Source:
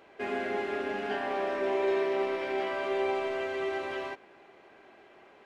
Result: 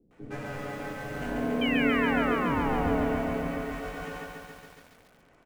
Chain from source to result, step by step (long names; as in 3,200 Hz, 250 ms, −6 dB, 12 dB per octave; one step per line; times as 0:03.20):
running median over 9 samples
high-shelf EQ 4,300 Hz +3 dB
frequency shifter −470 Hz
0:01.19–0:03.60: bass and treble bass +7 dB, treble −12 dB
0:01.50–0:02.93: sound drawn into the spectrogram fall 250–2,800 Hz −29 dBFS
ring modulation 360 Hz
mains-hum notches 60/120 Hz
multiband delay without the direct sound lows, highs 110 ms, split 380 Hz
feedback echo at a low word length 140 ms, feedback 80%, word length 9 bits, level −4 dB